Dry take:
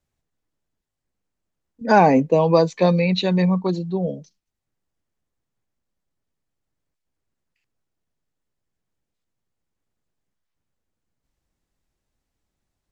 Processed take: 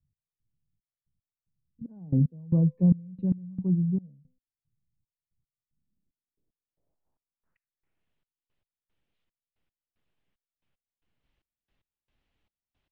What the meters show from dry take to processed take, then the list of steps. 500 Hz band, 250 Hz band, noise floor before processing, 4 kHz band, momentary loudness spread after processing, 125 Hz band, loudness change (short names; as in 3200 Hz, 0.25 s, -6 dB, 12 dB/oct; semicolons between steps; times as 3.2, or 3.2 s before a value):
-24.0 dB, -6.0 dB, -82 dBFS, under -40 dB, 17 LU, -2.0 dB, -8.0 dB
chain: de-hum 255 Hz, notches 4; low-pass sweep 140 Hz -> 3000 Hz, 5.6–8.11; step gate "x..xxx.." 113 bpm -24 dB